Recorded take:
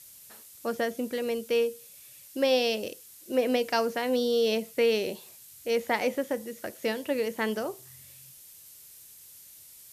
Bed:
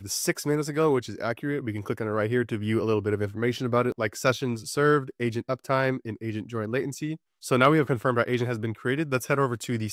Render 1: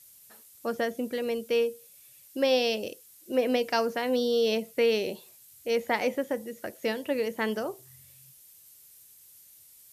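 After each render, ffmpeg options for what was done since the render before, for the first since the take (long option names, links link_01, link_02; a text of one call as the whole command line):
ffmpeg -i in.wav -af "afftdn=noise_reduction=6:noise_floor=-51" out.wav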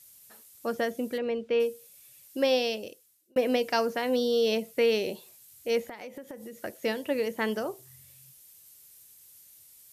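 ffmpeg -i in.wav -filter_complex "[0:a]asplit=3[link_01][link_02][link_03];[link_01]afade=type=out:start_time=1.17:duration=0.02[link_04];[link_02]lowpass=2800,afade=type=in:start_time=1.17:duration=0.02,afade=type=out:start_time=1.59:duration=0.02[link_05];[link_03]afade=type=in:start_time=1.59:duration=0.02[link_06];[link_04][link_05][link_06]amix=inputs=3:normalize=0,asettb=1/sr,asplit=3[link_07][link_08][link_09];[link_07]atrim=end=5.874[link_10];[link_08]atrim=start=5.87:end=6.57,asetpts=PTS-STARTPTS,afade=type=in:duration=0.004:curve=qsin,afade=type=out:start_time=0.696:duration=0.004:curve=qsin,acompressor=threshold=-37dB:ratio=20:attack=3.2:release=140:knee=1:detection=peak[link_11];[link_09]atrim=start=6.566[link_12];[link_10][link_11]acrossfade=duration=0.004:curve1=hsin:curve2=qsin[link_13];[link_13][link_12]acrossfade=duration=0.004:curve1=qsin:curve2=hsin,asplit=2[link_14][link_15];[link_14]atrim=end=3.36,asetpts=PTS-STARTPTS,afade=type=out:start_time=2.45:duration=0.91[link_16];[link_15]atrim=start=3.36,asetpts=PTS-STARTPTS,afade=type=in:duration=0.004:curve=hsin[link_17];[link_16][link_17]concat=n=2:v=0:a=1" out.wav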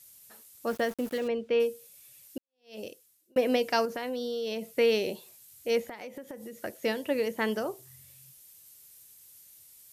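ffmpeg -i in.wav -filter_complex "[0:a]asettb=1/sr,asplit=3[link_01][link_02][link_03];[link_01]atrim=end=0.674[link_04];[link_02]atrim=start=0.67:end=1.28,asetpts=PTS-STARTPTS,afade=type=in:duration=0.004:curve=qsin,afade=type=out:start_time=0.606:duration=0.004:curve=qsin,aeval=exprs='val(0)*gte(abs(val(0)),0.00944)':channel_layout=same[link_05];[link_03]atrim=start=1.276[link_06];[link_04][link_05]acrossfade=duration=0.004:curve1=hsin:curve2=qsin[link_07];[link_07][link_06]acrossfade=duration=0.004:curve1=qsin:curve2=hsin,asettb=1/sr,asplit=3[link_08][link_09][link_10];[link_08]atrim=end=3.854[link_11];[link_09]atrim=start=3.85:end=4.74,asetpts=PTS-STARTPTS,afade=type=in:duration=0.004:curve=qsin,afade=type=out:start_time=0.886:duration=0.004:curve=qsin,acompressor=threshold=-30dB:ratio=6:attack=3.2:release=140:knee=1:detection=peak[link_12];[link_10]atrim=start=4.736[link_13];[link_11][link_12]acrossfade=duration=0.004:curve1=hsin:curve2=qsin[link_14];[link_14][link_13]acrossfade=duration=0.004:curve1=qsin:curve2=hsin,asplit=2[link_15][link_16];[link_15]atrim=end=2.38,asetpts=PTS-STARTPTS,afade=type=out:start_time=2.376:duration=0.004:curve=hsin[link_17];[link_16]atrim=start=2.38,asetpts=PTS-STARTPTS,afade=type=in:duration=0.41:curve=exp[link_18];[link_17][link_18]concat=n=2:v=0:a=1" out.wav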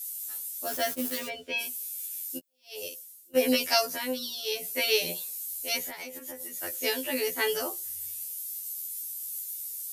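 ffmpeg -i in.wav -af "crystalizer=i=6:c=0,afftfilt=real='re*2*eq(mod(b,4),0)':imag='im*2*eq(mod(b,4),0)':win_size=2048:overlap=0.75" out.wav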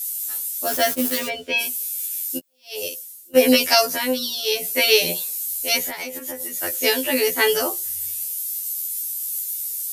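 ffmpeg -i in.wav -af "volume=9.5dB,alimiter=limit=-3dB:level=0:latency=1" out.wav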